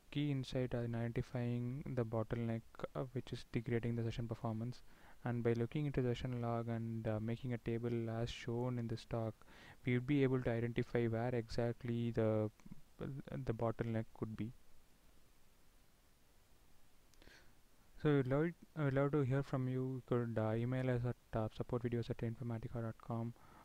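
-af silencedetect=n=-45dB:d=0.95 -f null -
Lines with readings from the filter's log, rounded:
silence_start: 14.49
silence_end: 17.14 | silence_duration: 2.65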